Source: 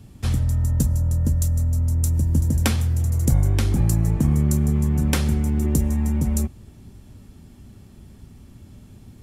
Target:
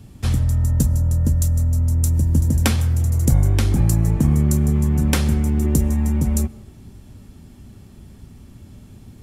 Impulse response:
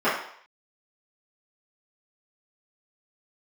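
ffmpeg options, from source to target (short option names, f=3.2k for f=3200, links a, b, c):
-filter_complex "[0:a]asplit=2[a][b];[1:a]atrim=start_sample=2205,adelay=127[c];[b][c]afir=irnorm=-1:irlink=0,volume=-38dB[d];[a][d]amix=inputs=2:normalize=0,volume=2.5dB"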